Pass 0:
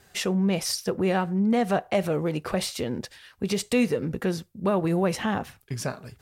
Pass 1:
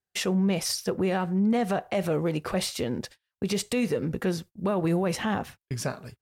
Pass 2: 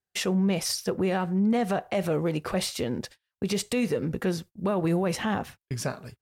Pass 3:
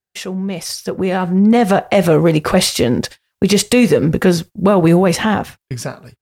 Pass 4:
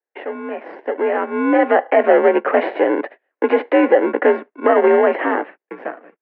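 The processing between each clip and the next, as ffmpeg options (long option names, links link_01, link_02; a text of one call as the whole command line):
ffmpeg -i in.wav -af "agate=range=-35dB:threshold=-42dB:ratio=16:detection=peak,alimiter=limit=-18dB:level=0:latency=1:release=18" out.wav
ffmpeg -i in.wav -af anull out.wav
ffmpeg -i in.wav -af "dynaudnorm=framelen=280:gausssize=9:maxgain=14dB,volume=1.5dB" out.wav
ffmpeg -i in.wav -filter_complex "[0:a]asplit=2[link_01][link_02];[link_02]acrusher=samples=37:mix=1:aa=0.000001,volume=-3dB[link_03];[link_01][link_03]amix=inputs=2:normalize=0,highpass=frequency=280:width_type=q:width=0.5412,highpass=frequency=280:width_type=q:width=1.307,lowpass=frequency=2200:width_type=q:width=0.5176,lowpass=frequency=2200:width_type=q:width=0.7071,lowpass=frequency=2200:width_type=q:width=1.932,afreqshift=60,volume=-2dB" out.wav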